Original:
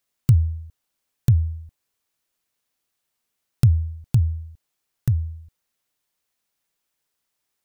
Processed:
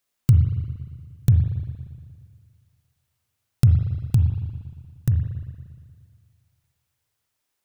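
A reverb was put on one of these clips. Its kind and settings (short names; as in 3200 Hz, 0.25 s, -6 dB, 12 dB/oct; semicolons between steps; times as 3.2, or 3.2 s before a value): spring tank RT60 1.9 s, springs 39/58 ms, chirp 70 ms, DRR 4.5 dB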